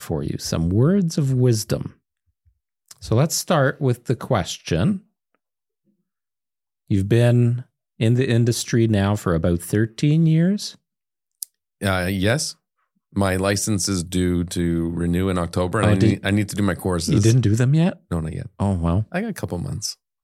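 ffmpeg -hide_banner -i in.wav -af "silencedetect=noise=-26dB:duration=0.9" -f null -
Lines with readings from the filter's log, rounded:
silence_start: 1.86
silence_end: 2.91 | silence_duration: 1.05
silence_start: 4.97
silence_end: 6.91 | silence_duration: 1.94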